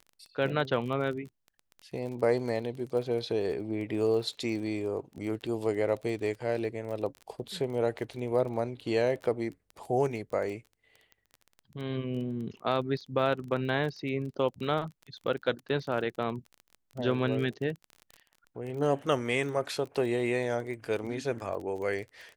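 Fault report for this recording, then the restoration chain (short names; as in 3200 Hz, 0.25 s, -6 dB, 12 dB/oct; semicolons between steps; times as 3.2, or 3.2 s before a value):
crackle 25/s -37 dBFS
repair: de-click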